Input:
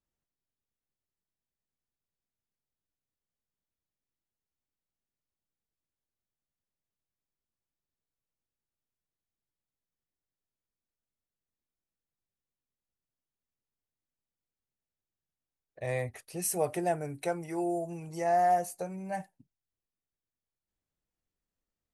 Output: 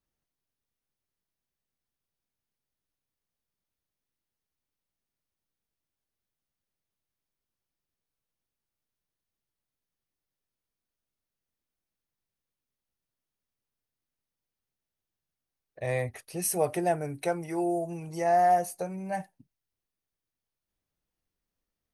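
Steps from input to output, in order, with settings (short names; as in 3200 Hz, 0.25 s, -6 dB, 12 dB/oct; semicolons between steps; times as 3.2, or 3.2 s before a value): notch 7400 Hz, Q 6.8; gain +3 dB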